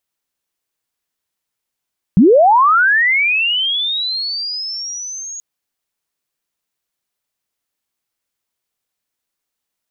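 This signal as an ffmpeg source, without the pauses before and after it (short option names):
-f lavfi -i "aevalsrc='pow(10,(-4.5-21.5*t/3.23)/20)*sin(2*PI*(160*t+6540*t*t/(2*3.23)))':d=3.23:s=44100"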